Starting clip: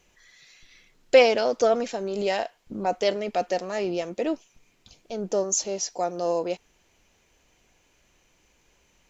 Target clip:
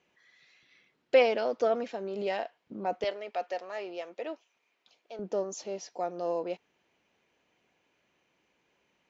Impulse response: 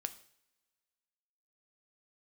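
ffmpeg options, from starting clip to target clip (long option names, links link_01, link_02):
-af "asetnsamples=nb_out_samples=441:pad=0,asendcmd='3.04 highpass f 540;5.19 highpass f 160',highpass=160,lowpass=3400,volume=-6dB"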